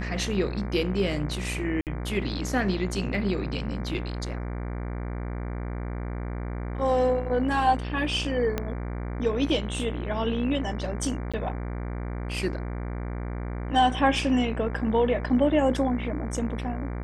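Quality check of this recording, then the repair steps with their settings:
buzz 60 Hz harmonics 39 -32 dBFS
1.81–1.87 gap 58 ms
8.58 pop -13 dBFS
11.32–11.34 gap 16 ms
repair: de-click; de-hum 60 Hz, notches 39; interpolate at 1.81, 58 ms; interpolate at 11.32, 16 ms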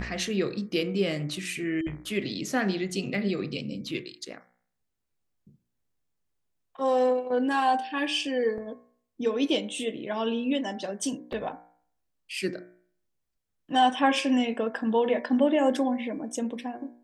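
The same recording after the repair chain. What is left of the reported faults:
8.58 pop

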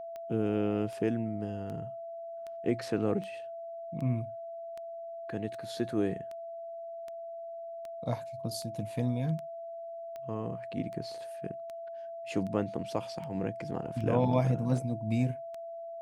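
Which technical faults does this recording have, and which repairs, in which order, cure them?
tick 78 rpm -30 dBFS
tone 670 Hz -39 dBFS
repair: de-click; notch 670 Hz, Q 30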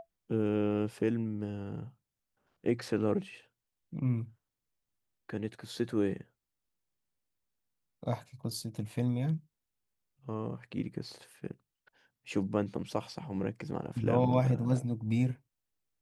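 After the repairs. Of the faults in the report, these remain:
none

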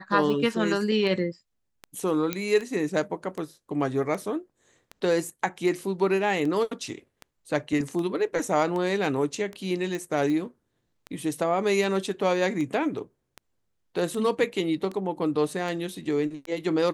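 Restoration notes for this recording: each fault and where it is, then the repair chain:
tick 78 rpm -22 dBFS
2.33 pop -11 dBFS
9.95 pop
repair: de-click

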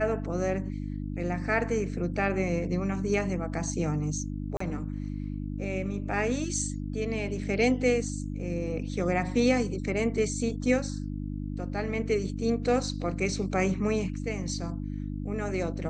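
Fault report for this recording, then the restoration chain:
hum 50 Hz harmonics 6 -34 dBFS
4.57–4.6 gap 34 ms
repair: de-hum 50 Hz, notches 6; interpolate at 4.57, 34 ms

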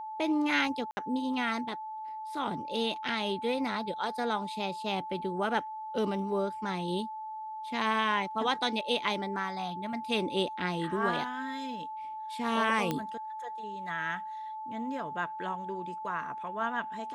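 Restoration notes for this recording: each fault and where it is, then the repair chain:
tone 870 Hz -37 dBFS
0.91–0.97 gap 60 ms
12.91 pop -16 dBFS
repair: de-click; notch 870 Hz, Q 30; interpolate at 0.91, 60 ms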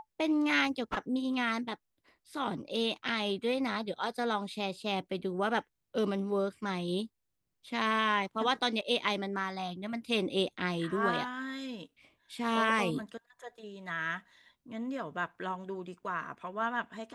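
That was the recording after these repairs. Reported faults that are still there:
none

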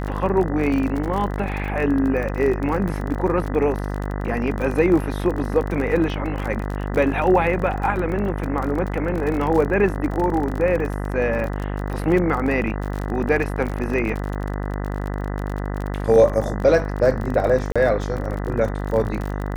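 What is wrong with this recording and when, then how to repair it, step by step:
buzz 50 Hz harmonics 40 -26 dBFS
crackle 38/s -26 dBFS
17.72–17.76 gap 36 ms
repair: de-click; de-hum 50 Hz, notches 40; interpolate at 17.72, 36 ms

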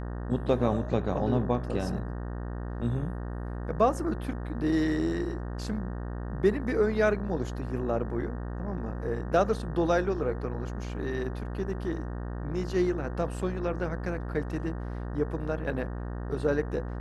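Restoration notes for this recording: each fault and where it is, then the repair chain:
buzz 60 Hz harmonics 31 -35 dBFS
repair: de-hum 60 Hz, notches 31

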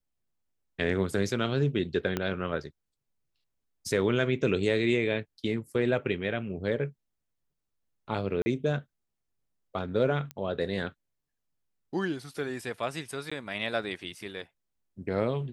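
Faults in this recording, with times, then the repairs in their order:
2.17 pop -14 dBFS
8.42–8.46 gap 40 ms
10.31 pop -22 dBFS
13.3–13.31 gap 15 ms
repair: de-click; interpolate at 8.42, 40 ms; interpolate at 13.3, 15 ms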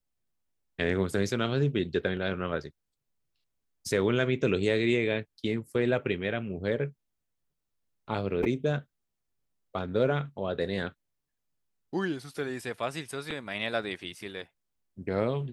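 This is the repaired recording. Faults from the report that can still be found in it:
2.17 pop

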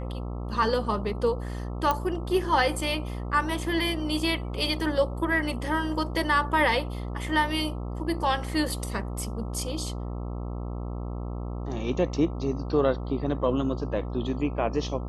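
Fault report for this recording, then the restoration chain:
buzz 60 Hz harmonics 22 -33 dBFS
1.91 pop -12 dBFS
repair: de-click; de-hum 60 Hz, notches 22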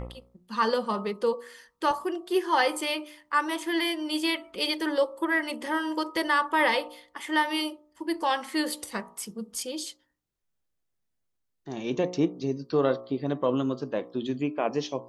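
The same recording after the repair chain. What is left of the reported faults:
none

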